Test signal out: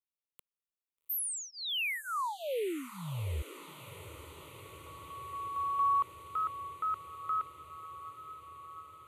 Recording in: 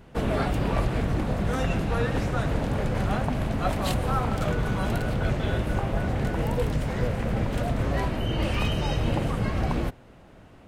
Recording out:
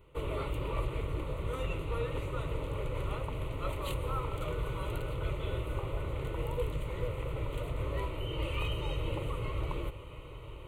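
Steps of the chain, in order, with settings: fixed phaser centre 1100 Hz, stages 8; diffused feedback echo 0.802 s, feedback 76%, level -15 dB; gain -6.5 dB

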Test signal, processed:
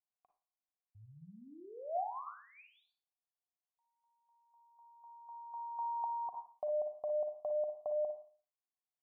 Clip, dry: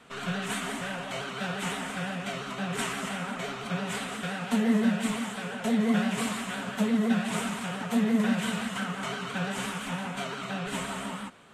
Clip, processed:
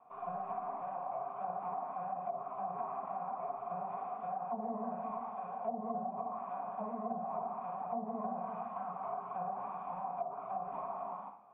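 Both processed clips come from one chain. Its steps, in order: vocal tract filter a; Schroeder reverb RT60 0.4 s, DRR 4.5 dB; treble ducked by the level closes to 670 Hz, closed at -38 dBFS; gain +6 dB

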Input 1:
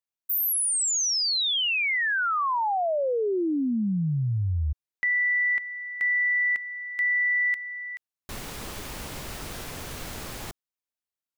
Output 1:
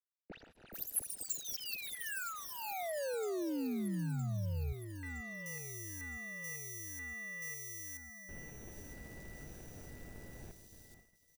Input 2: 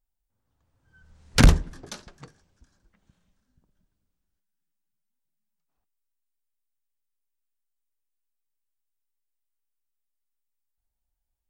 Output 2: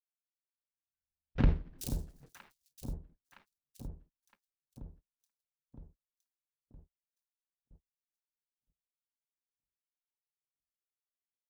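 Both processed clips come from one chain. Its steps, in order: median filter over 41 samples; pre-emphasis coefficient 0.8; on a send: echo with dull and thin repeats by turns 0.482 s, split 930 Hz, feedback 79%, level -10 dB; on the sum: gate -60 dBFS, range -35 dB; bands offset in time lows, highs 0.43 s, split 3500 Hz; gain +2.5 dB

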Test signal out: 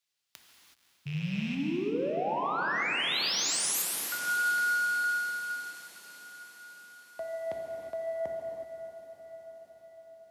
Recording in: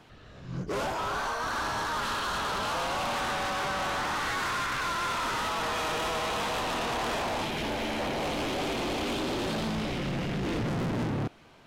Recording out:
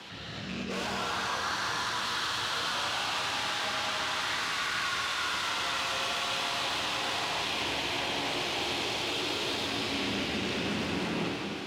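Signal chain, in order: rattling part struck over -38 dBFS, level -36 dBFS; bell 3800 Hz +11.5 dB 2.3 oct; reverse; compressor 10:1, threshold -36 dBFS; reverse; frequency shift +61 Hz; soft clip -32 dBFS; on a send: diffused feedback echo 0.54 s, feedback 61%, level -11 dB; on the sum: non-linear reverb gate 0.4 s flat, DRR -0.5 dB; gain +4.5 dB

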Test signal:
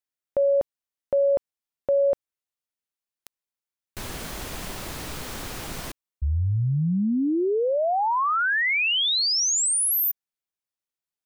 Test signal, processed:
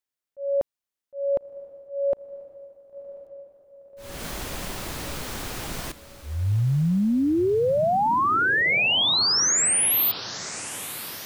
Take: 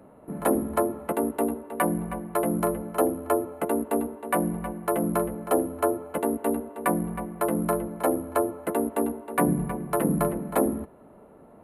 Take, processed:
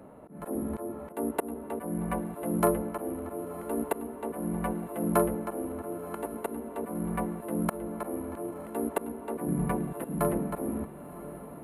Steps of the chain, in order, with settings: auto swell 0.3 s; diffused feedback echo 1.036 s, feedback 56%, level -14.5 dB; gain +1.5 dB

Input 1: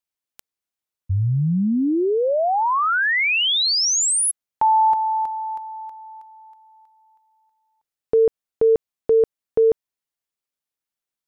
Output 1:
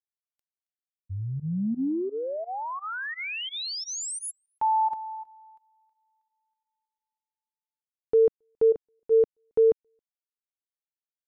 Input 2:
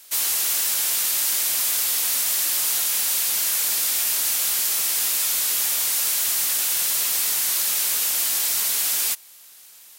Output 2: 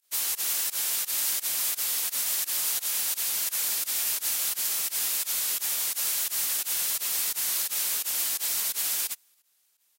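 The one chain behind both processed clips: dynamic EQ 250 Hz, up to +3 dB, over -31 dBFS, Q 0.96; pump 86 bpm, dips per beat 2, -16 dB, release 69 ms; on a send: echo 0.272 s -21 dB; on the sum: upward expander 2.5:1, over -33 dBFS; gain -4.5 dB

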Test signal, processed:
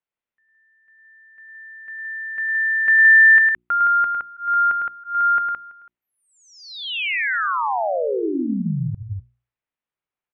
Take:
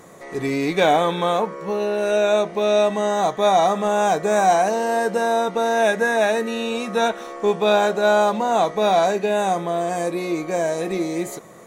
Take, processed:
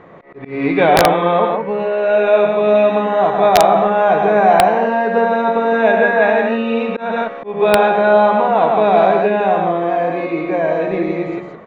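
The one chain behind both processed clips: LPF 2800 Hz 24 dB/oct; notches 60/120/180/240/300/360 Hz; loudspeakers at several distances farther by 36 m -6 dB, 57 m -4 dB; wrapped overs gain 5 dB; auto swell 0.211 s; gain +4 dB

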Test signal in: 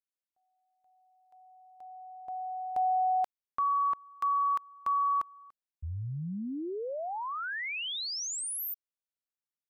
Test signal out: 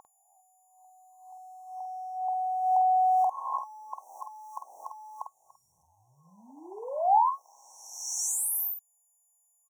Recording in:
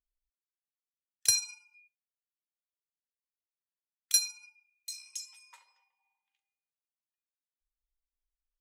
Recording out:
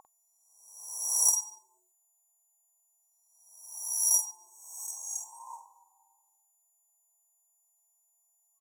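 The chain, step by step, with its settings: spectral swells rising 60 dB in 0.95 s; whine 1400 Hz -41 dBFS; sample leveller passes 1; in parallel at -2 dB: compressor 16:1, threshold -34 dBFS; on the sum: resonant high-pass 820 Hz, resonance Q 4.9; FFT band-reject 1100–5500 Hz; doubler 49 ms -6.5 dB; gain -5.5 dB

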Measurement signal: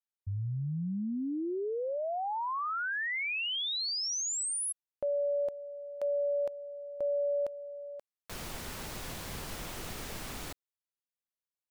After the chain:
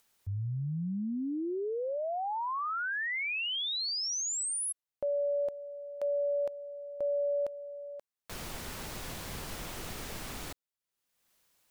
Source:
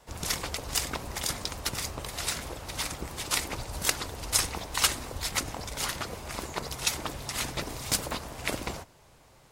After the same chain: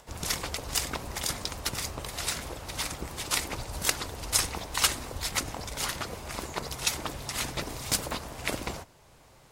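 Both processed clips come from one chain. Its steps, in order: upward compressor, threshold -52 dBFS

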